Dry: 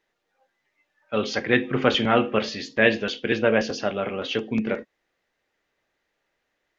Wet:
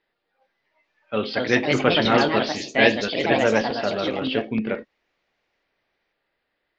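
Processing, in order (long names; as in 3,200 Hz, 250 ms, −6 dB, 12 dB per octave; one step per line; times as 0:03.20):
downsampling to 11,025 Hz
delay with pitch and tempo change per echo 417 ms, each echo +3 semitones, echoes 2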